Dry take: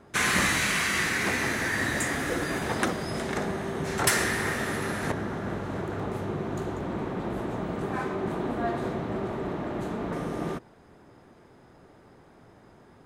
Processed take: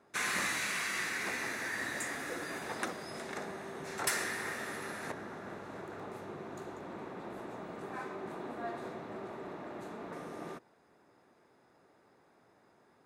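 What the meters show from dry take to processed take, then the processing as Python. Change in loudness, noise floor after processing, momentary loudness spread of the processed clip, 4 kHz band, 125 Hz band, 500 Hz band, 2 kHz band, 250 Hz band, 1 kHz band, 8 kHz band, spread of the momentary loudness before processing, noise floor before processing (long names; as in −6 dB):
−10.0 dB, −67 dBFS, 12 LU, −9.5 dB, −18.0 dB, −11.0 dB, −8.5 dB, −14.0 dB, −9.0 dB, −8.5 dB, 9 LU, −55 dBFS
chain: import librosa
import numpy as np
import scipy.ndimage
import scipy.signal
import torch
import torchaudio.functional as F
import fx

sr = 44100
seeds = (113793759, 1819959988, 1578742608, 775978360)

y = fx.highpass(x, sr, hz=400.0, slope=6)
y = fx.notch(y, sr, hz=3100.0, q=12.0)
y = y * 10.0 ** (-8.5 / 20.0)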